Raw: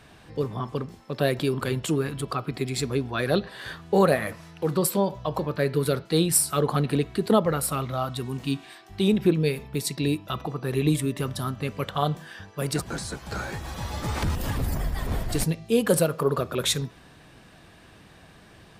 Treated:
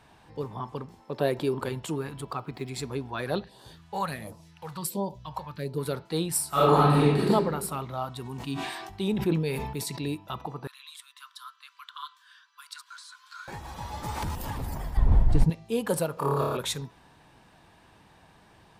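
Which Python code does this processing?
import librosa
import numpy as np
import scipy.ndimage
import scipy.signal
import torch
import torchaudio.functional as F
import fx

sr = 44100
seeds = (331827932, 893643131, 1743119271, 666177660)

y = fx.peak_eq(x, sr, hz=410.0, db=6.0, octaves=1.4, at=(0.98, 1.69))
y = fx.median_filter(y, sr, points=5, at=(2.24, 2.69))
y = fx.phaser_stages(y, sr, stages=2, low_hz=300.0, high_hz=1900.0, hz=1.4, feedback_pct=25, at=(3.44, 5.78))
y = fx.reverb_throw(y, sr, start_s=6.49, length_s=0.8, rt60_s=1.1, drr_db=-10.5)
y = fx.sustainer(y, sr, db_per_s=39.0, at=(8.24, 10.01), fade=0.02)
y = fx.cheby_ripple_highpass(y, sr, hz=1000.0, ripple_db=9, at=(10.67, 13.48))
y = fx.high_shelf(y, sr, hz=7600.0, db=7.0, at=(14.03, 14.45))
y = fx.riaa(y, sr, side='playback', at=(14.97, 15.5))
y = fx.room_flutter(y, sr, wall_m=4.8, rt60_s=1.3, at=(16.14, 16.57))
y = fx.peak_eq(y, sr, hz=900.0, db=10.5, octaves=0.4)
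y = y * 10.0 ** (-7.0 / 20.0)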